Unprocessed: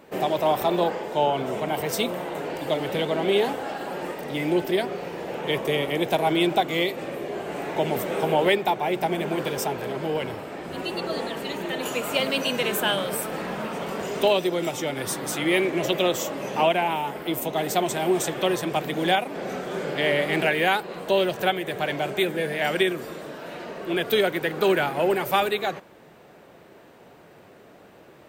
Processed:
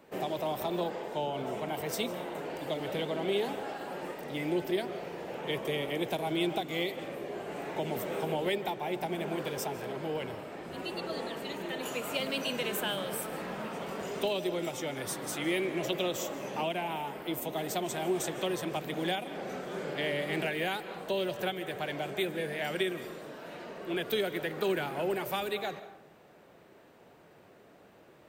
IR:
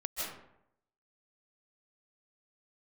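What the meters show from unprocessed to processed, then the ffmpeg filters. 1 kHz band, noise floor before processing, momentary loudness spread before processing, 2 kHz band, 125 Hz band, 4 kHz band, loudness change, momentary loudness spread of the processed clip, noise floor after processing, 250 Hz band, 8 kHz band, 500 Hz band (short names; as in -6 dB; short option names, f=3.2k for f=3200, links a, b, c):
-10.5 dB, -50 dBFS, 9 LU, -9.5 dB, -7.5 dB, -8.5 dB, -9.0 dB, 7 LU, -58 dBFS, -8.0 dB, -7.5 dB, -9.0 dB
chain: -filter_complex "[0:a]asplit=2[a][b];[1:a]atrim=start_sample=2205[c];[b][c]afir=irnorm=-1:irlink=0,volume=-16.5dB[d];[a][d]amix=inputs=2:normalize=0,acrossover=split=400|3000[e][f][g];[f]acompressor=threshold=-24dB:ratio=6[h];[e][h][g]amix=inputs=3:normalize=0,volume=-8.5dB"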